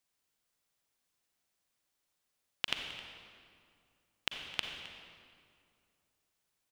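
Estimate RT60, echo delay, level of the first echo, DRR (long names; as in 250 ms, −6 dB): 2.3 s, 264 ms, −18.0 dB, 3.5 dB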